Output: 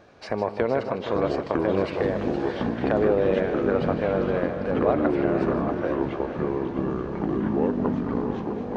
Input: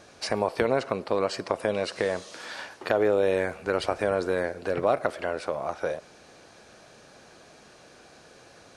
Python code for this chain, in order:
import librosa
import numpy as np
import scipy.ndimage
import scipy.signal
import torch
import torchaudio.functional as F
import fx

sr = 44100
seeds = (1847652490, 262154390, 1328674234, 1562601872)

y = fx.high_shelf(x, sr, hz=5200.0, db=-11.5, at=(3.41, 4.38))
y = fx.echo_heads(y, sr, ms=155, heads='first and third', feedback_pct=61, wet_db=-10.5)
y = fx.echo_pitch(y, sr, ms=707, semitones=-6, count=3, db_per_echo=-3.0)
y = fx.spacing_loss(y, sr, db_at_10k=26)
y = F.gain(torch.from_numpy(y), 1.5).numpy()